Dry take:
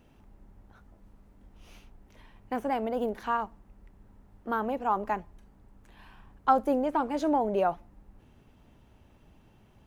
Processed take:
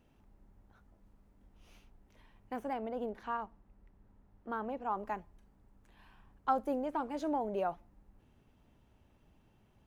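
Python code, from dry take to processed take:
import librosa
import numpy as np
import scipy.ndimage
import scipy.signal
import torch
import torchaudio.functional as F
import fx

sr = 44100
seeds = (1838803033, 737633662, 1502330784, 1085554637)

y = fx.lowpass(x, sr, hz=3600.0, slope=6, at=(2.73, 4.98))
y = y * librosa.db_to_amplitude(-8.0)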